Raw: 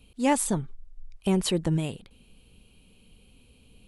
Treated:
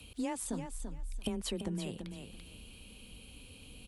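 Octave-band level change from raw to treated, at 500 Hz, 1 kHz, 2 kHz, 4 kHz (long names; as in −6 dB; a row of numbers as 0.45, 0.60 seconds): −12.0, −15.0, −12.0, −8.0 decibels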